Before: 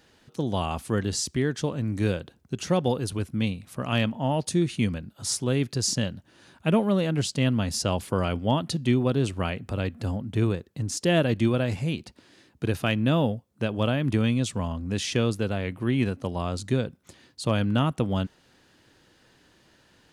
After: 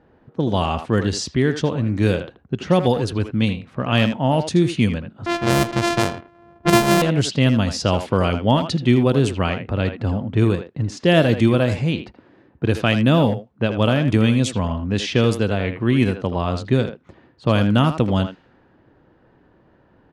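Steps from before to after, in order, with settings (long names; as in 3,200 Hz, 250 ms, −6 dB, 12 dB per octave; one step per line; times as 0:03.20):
0:05.26–0:07.02: samples sorted by size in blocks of 128 samples
far-end echo of a speakerphone 80 ms, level −8 dB
low-pass that shuts in the quiet parts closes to 990 Hz, open at −19 dBFS
level +7 dB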